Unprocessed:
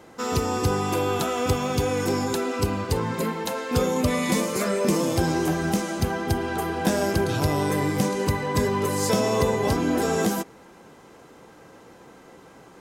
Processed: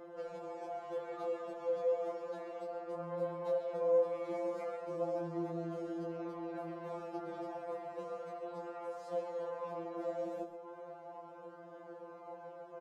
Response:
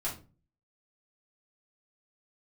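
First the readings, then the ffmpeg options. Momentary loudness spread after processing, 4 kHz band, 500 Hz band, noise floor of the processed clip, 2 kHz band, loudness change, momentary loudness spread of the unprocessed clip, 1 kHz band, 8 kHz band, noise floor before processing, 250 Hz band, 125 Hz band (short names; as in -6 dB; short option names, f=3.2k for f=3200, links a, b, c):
15 LU, under -30 dB, -11.0 dB, -52 dBFS, -25.0 dB, -15.5 dB, 4 LU, -16.5 dB, under -35 dB, -49 dBFS, -20.0 dB, -26.0 dB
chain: -filter_complex "[0:a]acompressor=threshold=-36dB:ratio=3,aeval=exprs='(tanh(63.1*val(0)+0.7)-tanh(0.7))/63.1':c=same,flanger=delay=18:depth=5.1:speed=0.17,bandpass=f=630:t=q:w=2.8:csg=0,aecho=1:1:135:0.251,asplit=2[a][b];[1:a]atrim=start_sample=2205,adelay=74[c];[b][c]afir=irnorm=-1:irlink=0,volume=-17dB[d];[a][d]amix=inputs=2:normalize=0,afftfilt=real='re*2.83*eq(mod(b,8),0)':imag='im*2.83*eq(mod(b,8),0)':win_size=2048:overlap=0.75,volume=15dB"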